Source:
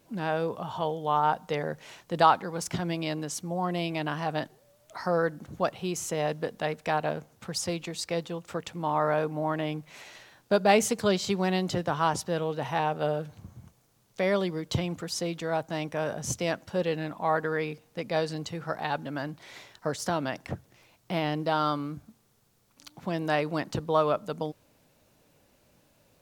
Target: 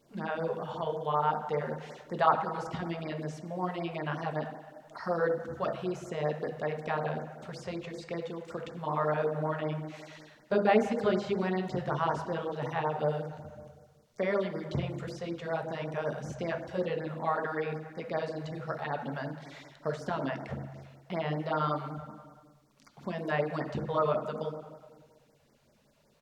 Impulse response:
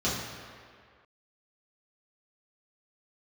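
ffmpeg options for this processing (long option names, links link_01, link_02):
-filter_complex "[0:a]equalizer=frequency=91:width_type=o:width=1.5:gain=-8,acrossover=split=2700[link_01][link_02];[link_02]acompressor=threshold=-49dB:ratio=4:attack=1:release=60[link_03];[link_01][link_03]amix=inputs=2:normalize=0,highshelf=frequency=7800:gain=-11,asplit=2[link_04][link_05];[link_05]adelay=292,lowpass=frequency=980:poles=1,volume=-21dB,asplit=2[link_06][link_07];[link_07]adelay=292,lowpass=frequency=980:poles=1,volume=0.48,asplit=2[link_08][link_09];[link_09]adelay=292,lowpass=frequency=980:poles=1,volume=0.48[link_10];[link_04][link_06][link_08][link_10]amix=inputs=4:normalize=0,asplit=2[link_11][link_12];[1:a]atrim=start_sample=2205,asetrate=52920,aresample=44100[link_13];[link_12][link_13]afir=irnorm=-1:irlink=0,volume=-14.5dB[link_14];[link_11][link_14]amix=inputs=2:normalize=0,afftfilt=real='re*(1-between(b*sr/1024,250*pow(3400/250,0.5+0.5*sin(2*PI*5.3*pts/sr))/1.41,250*pow(3400/250,0.5+0.5*sin(2*PI*5.3*pts/sr))*1.41))':imag='im*(1-between(b*sr/1024,250*pow(3400/250,0.5+0.5*sin(2*PI*5.3*pts/sr))/1.41,250*pow(3400/250,0.5+0.5*sin(2*PI*5.3*pts/sr))*1.41))':win_size=1024:overlap=0.75,volume=-2.5dB"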